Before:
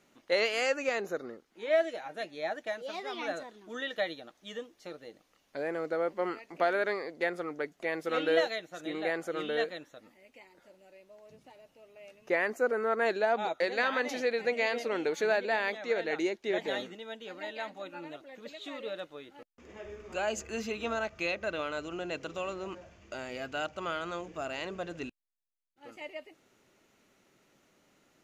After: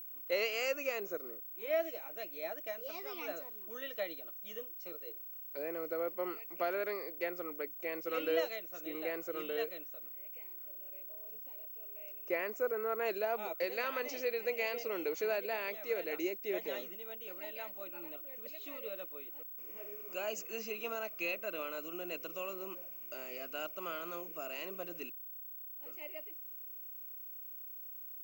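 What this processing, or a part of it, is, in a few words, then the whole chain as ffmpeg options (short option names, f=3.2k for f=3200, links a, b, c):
old television with a line whistle: -filter_complex "[0:a]asettb=1/sr,asplit=3[a][b][c];[a]atrim=end=4.934[d];[b]atrim=start=4.93:end=5.59,asetpts=PTS-STARTPTS,afade=t=in:d=0.004:c=qsin,afade=t=out:st=0.656:d=0.004:c=qsin,aecho=1:1:2.2:0.51,atrim=end_sample=29106[e];[c]atrim=start=5.586[f];[d][e]acrossfade=d=0.004:c1=hsin:c2=qsin[g];[g][f]acrossfade=d=0.004:c1=qsin:c2=hsin,highpass=f=190:w=0.5412,highpass=f=190:w=1.3066,equalizer=f=240:t=q:w=4:g=-9,equalizer=f=810:t=q:w=4:g=-8,equalizer=f=1.7k:t=q:w=4:g=-9,equalizer=f=2.6k:t=q:w=4:g=4,equalizer=f=3.6k:t=q:w=4:g=-10,equalizer=f=5.4k:t=q:w=4:g=5,lowpass=f=7.9k:w=0.5412,lowpass=f=7.9k:w=1.3066,aeval=exprs='val(0)+0.01*sin(2*PI*15734*n/s)':c=same,volume=-4.5dB"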